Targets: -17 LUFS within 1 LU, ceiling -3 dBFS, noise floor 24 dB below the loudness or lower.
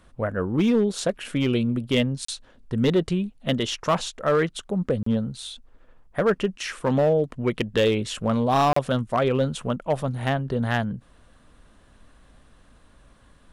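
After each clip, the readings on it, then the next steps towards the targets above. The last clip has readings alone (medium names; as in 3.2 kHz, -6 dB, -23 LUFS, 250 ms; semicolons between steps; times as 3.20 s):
clipped samples 1.0%; clipping level -14.0 dBFS; dropouts 3; longest dropout 34 ms; loudness -24.5 LUFS; peak level -14.0 dBFS; loudness target -17.0 LUFS
-> clip repair -14 dBFS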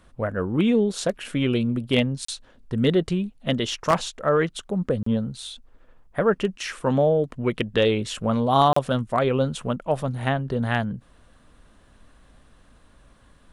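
clipped samples 0.0%; dropouts 3; longest dropout 34 ms
-> interpolate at 2.25/5.03/8.73 s, 34 ms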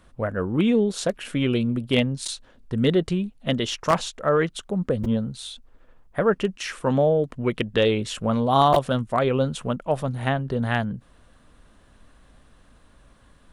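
dropouts 0; loudness -24.0 LUFS; peak level -5.0 dBFS; loudness target -17.0 LUFS
-> trim +7 dB; peak limiter -3 dBFS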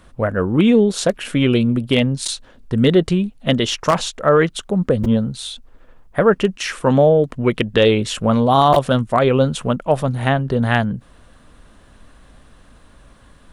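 loudness -17.5 LUFS; peak level -3.0 dBFS; noise floor -49 dBFS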